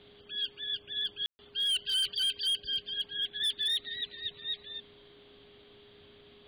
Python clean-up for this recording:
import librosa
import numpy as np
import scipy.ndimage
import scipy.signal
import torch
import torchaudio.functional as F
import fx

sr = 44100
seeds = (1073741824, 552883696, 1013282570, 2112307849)

y = fx.fix_declip(x, sr, threshold_db=-26.5)
y = fx.notch(y, sr, hz=410.0, q=30.0)
y = fx.fix_ambience(y, sr, seeds[0], print_start_s=5.2, print_end_s=5.7, start_s=1.26, end_s=1.39)